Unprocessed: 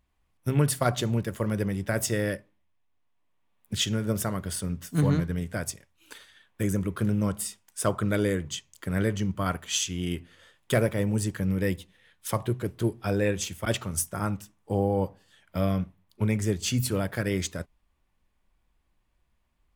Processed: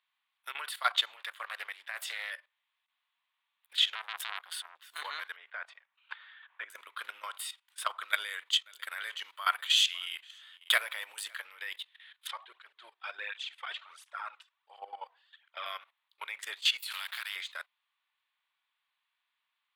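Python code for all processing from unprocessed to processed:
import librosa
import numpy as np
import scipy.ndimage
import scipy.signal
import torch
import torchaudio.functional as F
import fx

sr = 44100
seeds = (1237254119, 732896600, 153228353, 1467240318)

y = fx.chain(x, sr, fx.low_shelf(hz=340.0, db=-6.0),
    fx.hum_notches(base_hz=50, count=6),
    fx.doppler_dist(depth_ms=0.26), at=(1.16, 2.31))
y = fx.chain(y, sr, fx.highpass(hz=66.0, slope=6),
    fx.transformer_sat(knee_hz=2500.0), at=(3.95, 4.82))
y = fx.chain(y, sr, fx.lowpass(hz=1900.0, slope=12),
    fx.band_squash(depth_pct=40), at=(5.36, 6.7))
y = fx.chain(y, sr, fx.high_shelf(hz=5500.0, db=8.5),
    fx.echo_single(ms=549, db=-24.0), at=(8.01, 11.36))
y = fx.chain(y, sr, fx.air_absorb(metres=86.0),
    fx.flanger_cancel(hz=1.4, depth_ms=3.7), at=(12.27, 15.66))
y = fx.chain(y, sr, fx.highpass(hz=1400.0, slope=12),
    fx.spectral_comp(ratio=2.0), at=(16.9, 17.36))
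y = scipy.signal.sosfilt(scipy.signal.cheby2(4, 80, 170.0, 'highpass', fs=sr, output='sos'), y)
y = fx.high_shelf_res(y, sr, hz=4700.0, db=-8.0, q=3.0)
y = fx.level_steps(y, sr, step_db=15)
y = F.gain(torch.from_numpy(y), 6.0).numpy()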